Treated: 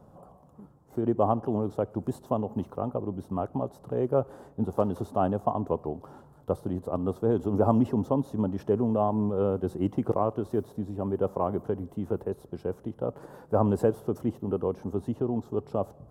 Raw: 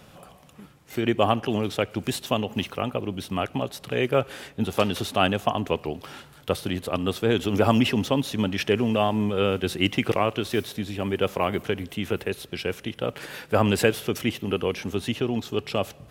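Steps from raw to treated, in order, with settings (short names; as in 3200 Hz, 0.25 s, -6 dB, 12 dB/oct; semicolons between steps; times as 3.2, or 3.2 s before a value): EQ curve 1000 Hz 0 dB, 2400 Hz -30 dB, 7700 Hz -16 dB; gain -2.5 dB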